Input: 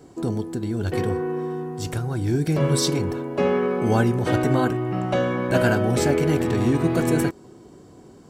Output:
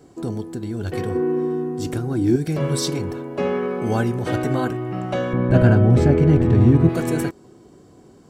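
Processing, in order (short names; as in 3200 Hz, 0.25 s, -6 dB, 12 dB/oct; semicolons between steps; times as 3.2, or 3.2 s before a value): 5.33–6.89 RIAA curve playback; notch 930 Hz, Q 23; 1.15–2.36 bell 290 Hz +12.5 dB 0.85 oct; gain -1.5 dB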